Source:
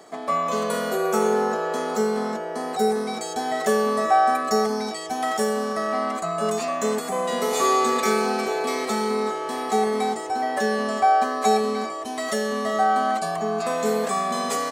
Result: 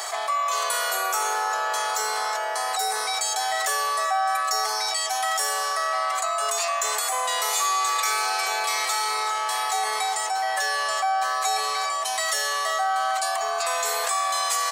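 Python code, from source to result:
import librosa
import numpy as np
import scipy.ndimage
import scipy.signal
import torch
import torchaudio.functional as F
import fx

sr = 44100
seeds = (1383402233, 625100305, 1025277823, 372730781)

y = scipy.signal.sosfilt(scipy.signal.butter(4, 750.0, 'highpass', fs=sr, output='sos'), x)
y = fx.high_shelf(y, sr, hz=2700.0, db=8.0)
y = fx.env_flatten(y, sr, amount_pct=70)
y = y * librosa.db_to_amplitude(-5.5)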